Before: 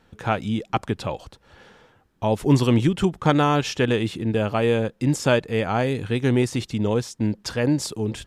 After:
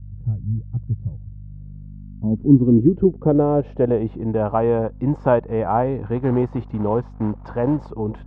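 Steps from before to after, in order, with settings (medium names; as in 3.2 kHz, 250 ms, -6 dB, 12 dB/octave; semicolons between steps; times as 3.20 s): hum 50 Hz, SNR 16 dB; 6.16–7.92 s: short-mantissa float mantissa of 2-bit; low-pass sweep 120 Hz -> 930 Hz, 1.35–4.33 s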